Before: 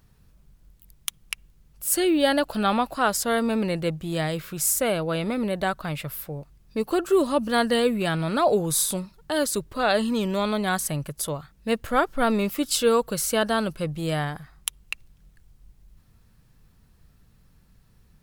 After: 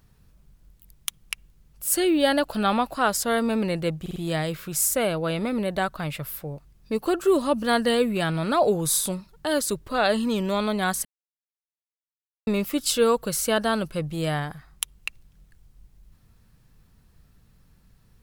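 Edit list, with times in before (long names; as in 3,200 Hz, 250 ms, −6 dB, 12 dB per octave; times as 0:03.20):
0:04.01: stutter 0.05 s, 4 plays
0:10.90–0:12.32: silence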